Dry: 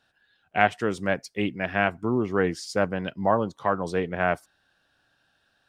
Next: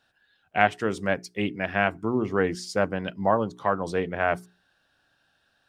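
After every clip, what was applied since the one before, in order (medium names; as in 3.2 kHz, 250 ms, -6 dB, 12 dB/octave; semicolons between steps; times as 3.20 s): hum notches 60/120/180/240/300/360/420 Hz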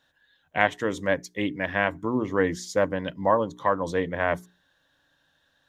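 rippled EQ curve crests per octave 1.1, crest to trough 8 dB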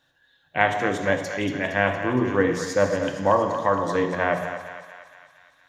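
thinning echo 232 ms, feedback 63%, high-pass 660 Hz, level -9 dB; on a send at -4.5 dB: reverberation RT60 1.1 s, pre-delay 3 ms; on the sum: trim +1 dB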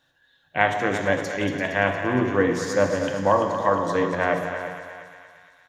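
feedback delay 340 ms, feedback 23%, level -10.5 dB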